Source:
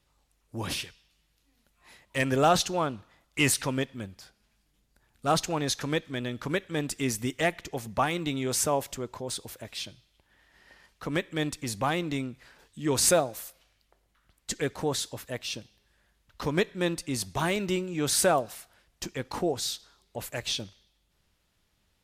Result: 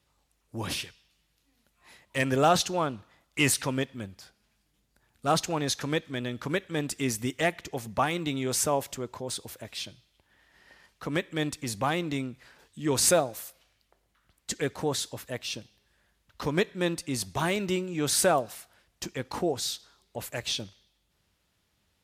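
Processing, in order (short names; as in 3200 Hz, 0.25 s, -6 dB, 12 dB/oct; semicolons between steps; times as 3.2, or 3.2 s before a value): HPF 53 Hz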